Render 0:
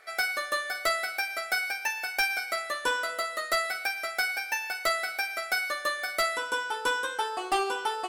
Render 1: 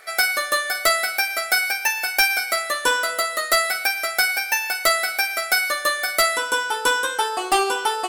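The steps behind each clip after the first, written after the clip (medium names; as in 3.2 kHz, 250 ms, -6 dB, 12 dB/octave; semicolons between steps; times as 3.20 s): treble shelf 6.8 kHz +9 dB; trim +7.5 dB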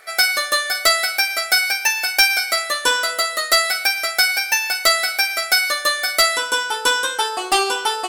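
dynamic bell 4.7 kHz, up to +7 dB, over -34 dBFS, Q 0.73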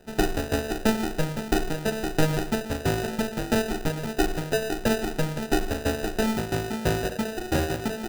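sample-rate reducer 1.1 kHz, jitter 0%; trim -6.5 dB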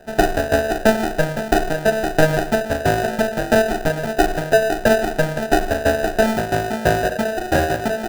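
small resonant body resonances 660/1600 Hz, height 12 dB, ringing for 20 ms; trim +4 dB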